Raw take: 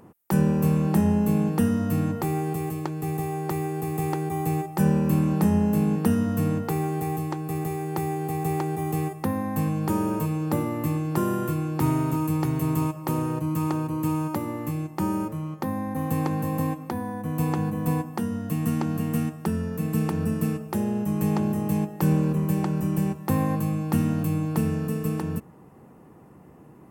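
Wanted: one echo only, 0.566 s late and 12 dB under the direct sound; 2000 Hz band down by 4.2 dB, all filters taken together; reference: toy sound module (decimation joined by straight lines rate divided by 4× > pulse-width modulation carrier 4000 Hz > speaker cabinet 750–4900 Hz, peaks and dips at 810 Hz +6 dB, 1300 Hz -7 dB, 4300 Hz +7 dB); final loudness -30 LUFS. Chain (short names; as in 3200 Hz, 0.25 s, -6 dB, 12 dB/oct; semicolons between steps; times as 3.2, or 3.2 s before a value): bell 2000 Hz -4 dB; echo 0.566 s -12 dB; decimation joined by straight lines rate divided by 4×; pulse-width modulation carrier 4000 Hz; speaker cabinet 750–4900 Hz, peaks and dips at 810 Hz +6 dB, 1300 Hz -7 dB, 4300 Hz +7 dB; gain -4 dB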